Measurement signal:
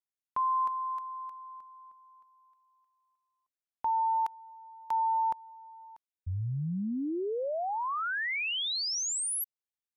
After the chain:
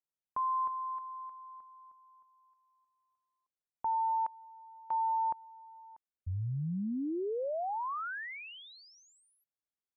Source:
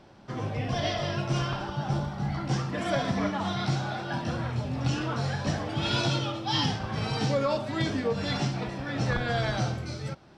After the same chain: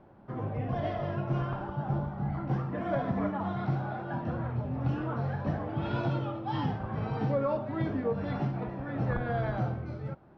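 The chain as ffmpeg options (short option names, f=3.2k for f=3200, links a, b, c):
-af "lowpass=1.3k,volume=-2dB"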